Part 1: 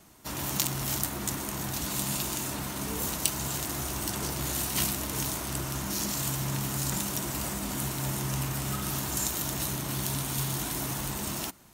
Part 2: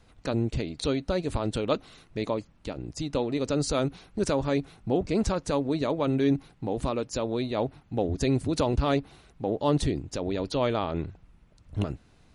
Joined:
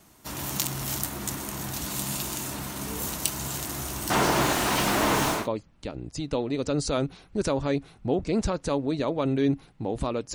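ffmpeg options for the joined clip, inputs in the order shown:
-filter_complex "[0:a]asettb=1/sr,asplit=3[a][b][c];[a]atrim=end=4.104[d];[b]atrim=start=4.1:end=5.48,asetpts=PTS-STARTPTS,afade=t=in:d=0.004:c=qsin,afade=t=out:st=1.376:d=0.004:c=qsin,asplit=2[e][f];[f]highpass=f=720:p=1,volume=36dB,asoftclip=type=tanh:threshold=-8dB[g];[e][g]amix=inputs=2:normalize=0,lowpass=f=1.1k:p=1,volume=-6dB[h];[c]atrim=start=5.476[i];[d][h]acrossfade=d=0.004:c1=hsin:c2=qsin[j];[j][i]acrossfade=d=0.004:c1=qsin:c2=hsin,apad=whole_dur=10.34,atrim=end=10.34,atrim=end=5.48,asetpts=PTS-STARTPTS[k];[1:a]atrim=start=2.1:end=7.16,asetpts=PTS-STARTPTS[l];[k][l]acrossfade=d=0.2:c1=tri:c2=tri"

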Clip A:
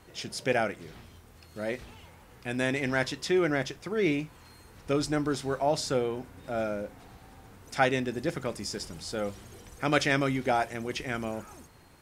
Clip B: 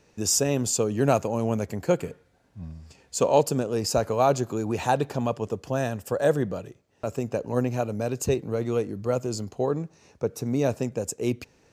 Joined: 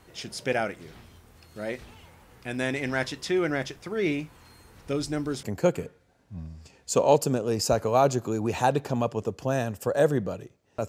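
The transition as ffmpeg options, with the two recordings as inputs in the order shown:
-filter_complex "[0:a]asettb=1/sr,asplit=3[a][b][c];[a]atrim=end=4.894[d];[b]atrim=start=4.89:end=5.43,asetpts=PTS-STARTPTS,afade=t=in:d=0.004:c=qsin,afade=t=out:st=0.536:d=0.004:c=qsin,equalizer=f=1.2k:w=0.65:g=-5[e];[c]atrim=start=5.426[f];[d][e]acrossfade=d=0.004:c1=hsin:c2=qsin[g];[g][f]acrossfade=d=0.004:c1=qsin:c2=hsin,apad=whole_dur=10.88,atrim=end=10.88,atrim=end=5.432[h];[1:a]atrim=start=1.678:end=7.13[i];[h][i]acrossfade=d=0.004:c1=hsin:c2=hsin"

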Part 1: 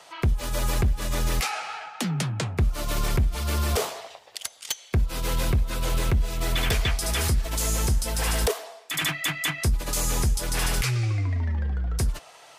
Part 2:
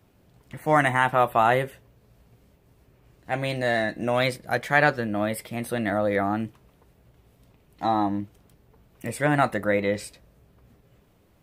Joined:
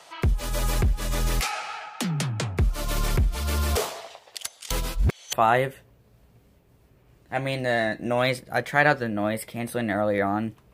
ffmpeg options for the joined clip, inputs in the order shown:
-filter_complex "[0:a]apad=whole_dur=10.73,atrim=end=10.73,asplit=2[a][b];[a]atrim=end=4.712[c];[b]atrim=start=4.708:end=5.332,asetpts=PTS-STARTPTS,areverse[d];[1:a]atrim=start=1.298:end=6.7[e];[c][d]acrossfade=d=0.004:c1=hsin:c2=hsin[f];[f][e]acrossfade=d=0.004:c1=hsin:c2=hsin"

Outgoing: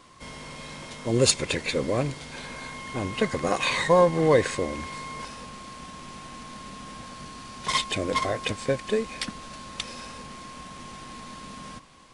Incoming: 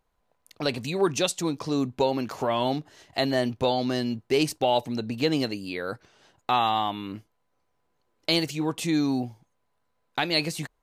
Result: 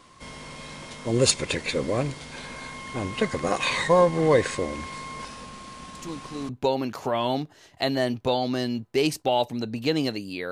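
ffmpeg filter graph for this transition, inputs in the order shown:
-filter_complex "[1:a]asplit=2[a][b];[0:a]apad=whole_dur=10.51,atrim=end=10.51,atrim=end=6.492[c];[b]atrim=start=1.848:end=5.87[d];[a]atrim=start=1.31:end=1.85,asetpts=PTS-STARTPTS,volume=-8.5dB,afade=t=in:d=0.004:c=hsin,afade=t=out:st=0.536:d=0.004:c=hsin,adelay=5950[e];[c][d]acrossfade=d=0.004:c1=hsin:c2=hsin[f];[f][e]amix=inputs=2:normalize=0"

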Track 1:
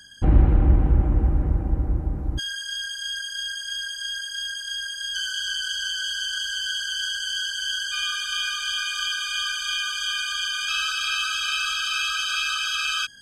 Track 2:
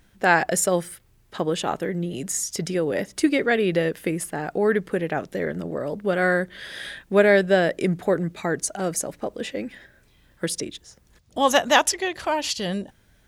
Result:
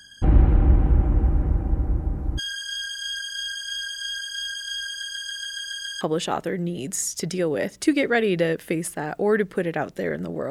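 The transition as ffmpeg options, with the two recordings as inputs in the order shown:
-filter_complex "[0:a]apad=whole_dur=10.5,atrim=end=10.5,asplit=8[a][b][c][d][e][f][g][h];[a]atrim=end=5.032[i];[b]atrim=start=4.888:end=5.032[j];[c]atrim=start=4.888:end=5.032[k];[d]atrim=start=4.888:end=5.032[l];[e]atrim=start=4.888:end=5.032[m];[f]atrim=start=4.888:end=5.032[n];[g]atrim=start=4.888:end=5.032[o];[h]atrim=start=4.888:end=5.032[p];[1:a]atrim=start=1.368:end=5.86[q];[i][j]acrossfade=d=0.004:c1=hsin:c2=hsin[r];[r][k]acrossfade=d=0.004:c1=hsin:c2=hsin[s];[s][l]acrossfade=d=0.004:c1=hsin:c2=hsin[t];[t][m]acrossfade=d=0.004:c1=hsin:c2=hsin[u];[u][n]acrossfade=d=0.004:c1=hsin:c2=hsin[v];[v][o]acrossfade=d=0.004:c1=hsin:c2=hsin[w];[w][p]acrossfade=d=0.004:c1=hsin:c2=hsin[x];[x][q]acrossfade=d=0.004:c1=hsin:c2=hsin"

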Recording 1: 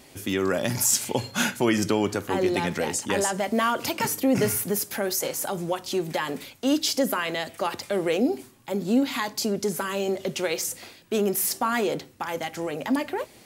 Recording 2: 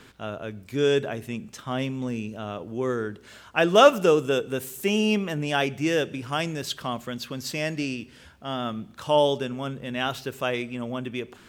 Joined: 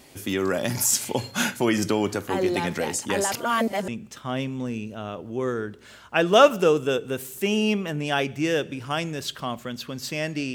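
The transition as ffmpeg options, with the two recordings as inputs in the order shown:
-filter_complex "[0:a]apad=whole_dur=10.54,atrim=end=10.54,asplit=2[a][b];[a]atrim=end=3.322[c];[b]atrim=start=3.318:end=3.882,asetpts=PTS-STARTPTS,areverse[d];[1:a]atrim=start=1.298:end=7.96[e];[c][d]acrossfade=d=0.004:c1=hsin:c2=hsin[f];[f][e]acrossfade=d=0.004:c1=hsin:c2=hsin"

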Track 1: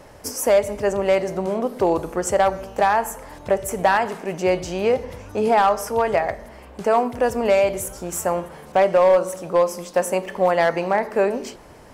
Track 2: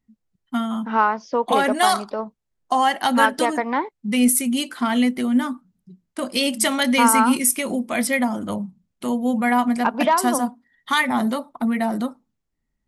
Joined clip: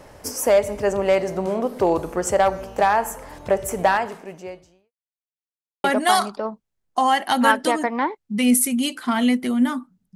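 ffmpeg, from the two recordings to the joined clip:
-filter_complex "[0:a]apad=whole_dur=10.15,atrim=end=10.15,asplit=2[a][b];[a]atrim=end=4.92,asetpts=PTS-STARTPTS,afade=t=out:st=3.85:d=1.07:c=qua[c];[b]atrim=start=4.92:end=5.84,asetpts=PTS-STARTPTS,volume=0[d];[1:a]atrim=start=1.58:end=5.89,asetpts=PTS-STARTPTS,afade=t=in:d=0.004:c=hsin[e];[c][d][e]concat=n=3:v=0:a=1"

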